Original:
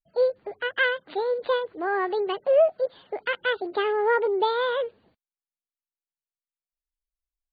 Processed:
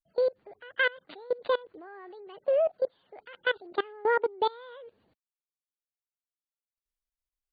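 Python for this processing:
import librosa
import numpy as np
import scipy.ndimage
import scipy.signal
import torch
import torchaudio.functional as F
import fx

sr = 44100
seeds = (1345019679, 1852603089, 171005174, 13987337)

y = fx.level_steps(x, sr, step_db=23)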